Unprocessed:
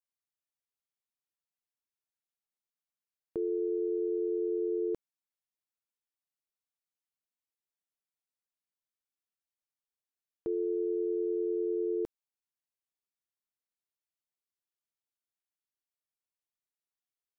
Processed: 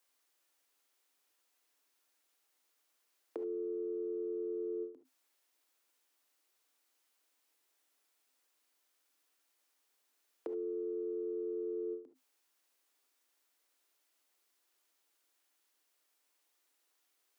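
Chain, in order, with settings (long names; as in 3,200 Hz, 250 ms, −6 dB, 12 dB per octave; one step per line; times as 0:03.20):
Chebyshev high-pass filter 260 Hz, order 8
brickwall limiter −35 dBFS, peak gain reduction 9 dB
compressor whose output falls as the input rises −46 dBFS, ratio −0.5
reverb whose tail is shaped and stops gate 90 ms rising, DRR 9 dB
every ending faded ahead of time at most 150 dB per second
level +8.5 dB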